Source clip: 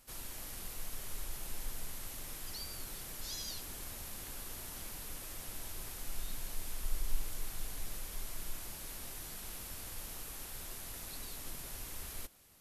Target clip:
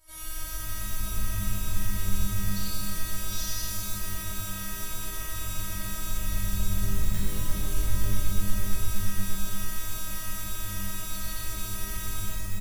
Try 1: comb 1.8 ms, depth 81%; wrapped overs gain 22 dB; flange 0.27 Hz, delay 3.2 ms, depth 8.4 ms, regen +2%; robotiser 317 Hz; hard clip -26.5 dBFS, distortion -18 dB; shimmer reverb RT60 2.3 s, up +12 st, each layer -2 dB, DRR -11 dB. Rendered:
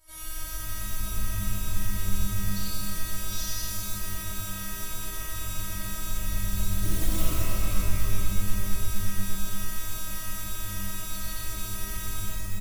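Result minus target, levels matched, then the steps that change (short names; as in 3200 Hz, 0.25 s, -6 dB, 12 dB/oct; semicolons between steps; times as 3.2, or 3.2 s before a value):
wrapped overs: distortion +10 dB
change: wrapped overs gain 15 dB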